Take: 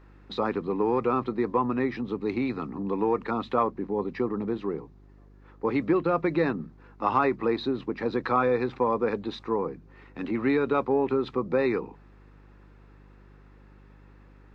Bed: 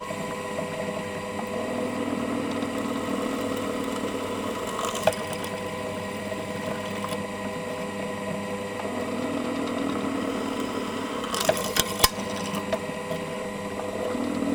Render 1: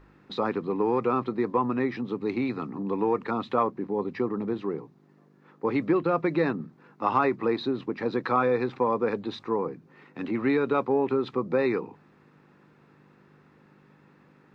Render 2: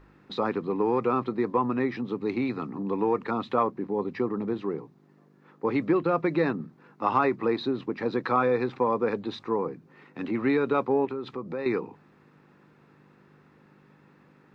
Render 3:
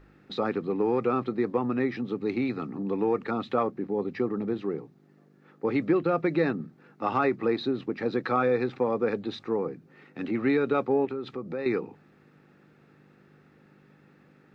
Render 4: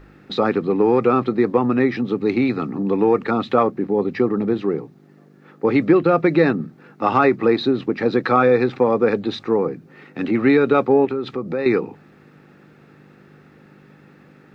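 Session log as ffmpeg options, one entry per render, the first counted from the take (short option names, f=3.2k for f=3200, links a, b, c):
-af "bandreject=f=50:t=h:w=4,bandreject=f=100:t=h:w=4"
-filter_complex "[0:a]asettb=1/sr,asplit=3[a][b][c];[a]atrim=end=11.054[d];[b]atrim=start=11.05:end=11.66,asetpts=PTS-STARTPTS,afade=t=in:d=0.004:c=qsin,afade=t=out:st=0.606:d=0.004:c=qsin,acompressor=threshold=-35dB:ratio=2:attack=3.2:release=140:knee=1:detection=peak[e];[c]atrim=start=11.656[f];[d][e]acrossfade=d=0.004:c1=hsin:c2=qsin[g];[g][f]acrossfade=d=0.004:c1=qsin:c2=hsin"
-af "equalizer=f=1k:t=o:w=0.21:g=-12.5"
-af "volume=9.5dB"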